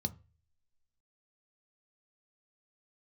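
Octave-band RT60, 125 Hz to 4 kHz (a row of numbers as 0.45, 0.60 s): 0.55, 0.30, 0.35, 0.30, 0.40, 0.30 s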